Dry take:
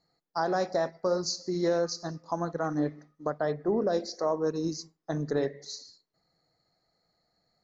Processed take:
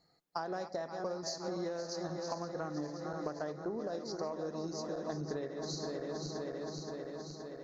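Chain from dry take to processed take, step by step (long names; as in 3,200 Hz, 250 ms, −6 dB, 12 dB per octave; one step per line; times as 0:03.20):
feedback delay that plays each chunk backwards 261 ms, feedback 81%, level −9.5 dB
harmonic generator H 3 −25 dB, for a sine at −15 dBFS
downward compressor 12 to 1, threshold −39 dBFS, peak gain reduction 17 dB
level +4 dB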